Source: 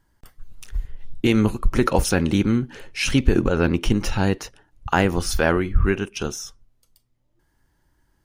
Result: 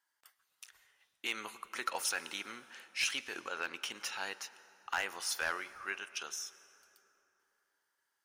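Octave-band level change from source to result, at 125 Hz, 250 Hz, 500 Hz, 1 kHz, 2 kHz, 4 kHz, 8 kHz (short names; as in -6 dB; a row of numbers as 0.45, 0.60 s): under -40 dB, -34.0 dB, -24.5 dB, -14.0 dB, -9.5 dB, -8.5 dB, -8.0 dB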